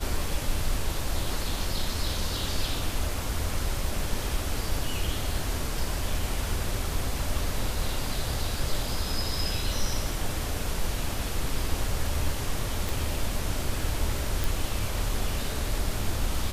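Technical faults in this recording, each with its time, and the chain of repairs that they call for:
12.89 s: pop
14.44 s: pop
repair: de-click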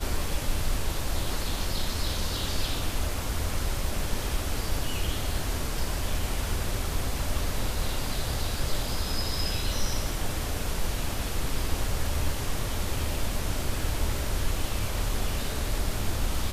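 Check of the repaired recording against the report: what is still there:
nothing left

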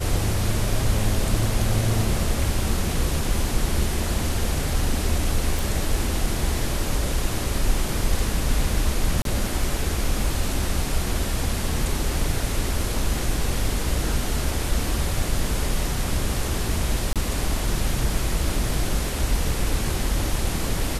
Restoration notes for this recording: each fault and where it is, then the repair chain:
5.59 s: pop
9.22–9.25 s: dropout 32 ms
17.13–17.16 s: dropout 27 ms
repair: de-click; interpolate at 9.22 s, 32 ms; interpolate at 17.13 s, 27 ms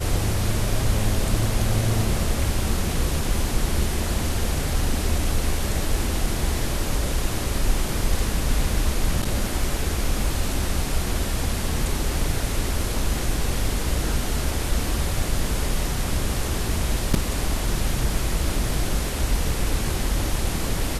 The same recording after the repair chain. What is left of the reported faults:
nothing left

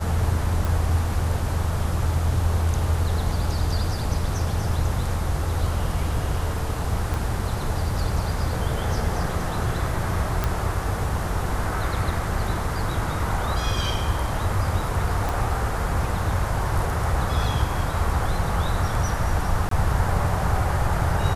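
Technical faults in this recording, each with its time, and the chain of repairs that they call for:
0.65 s: pop
7.14 s: pop
10.44 s: pop
15.29 s: pop
19.69–19.71 s: dropout 23 ms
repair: de-click; interpolate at 19.69 s, 23 ms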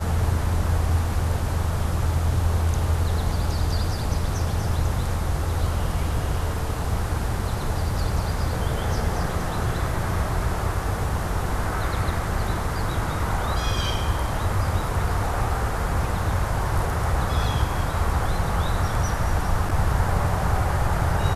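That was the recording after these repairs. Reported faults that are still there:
0.65 s: pop
7.14 s: pop
15.29 s: pop

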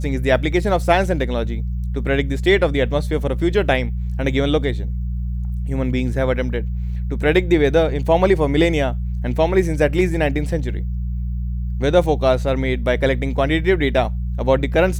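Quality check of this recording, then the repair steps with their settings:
hum 60 Hz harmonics 3 -23 dBFS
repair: de-hum 60 Hz, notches 3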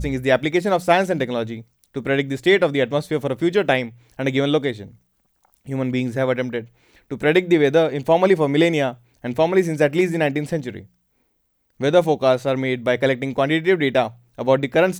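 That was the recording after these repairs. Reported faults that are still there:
nothing left

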